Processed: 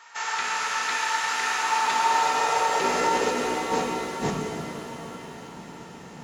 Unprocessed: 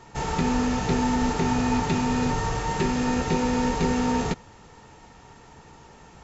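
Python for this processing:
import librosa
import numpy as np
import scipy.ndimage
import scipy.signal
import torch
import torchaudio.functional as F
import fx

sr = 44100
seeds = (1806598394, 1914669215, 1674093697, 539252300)

y = fx.octave_divider(x, sr, octaves=2, level_db=2.0)
y = fx.filter_sweep_highpass(y, sr, from_hz=1400.0, to_hz=180.0, start_s=1.43, end_s=4.39, q=1.6)
y = fx.over_compress(y, sr, threshold_db=-26.0, ratio=-0.5)
y = fx.rev_shimmer(y, sr, seeds[0], rt60_s=3.5, semitones=7, shimmer_db=-8, drr_db=0.5)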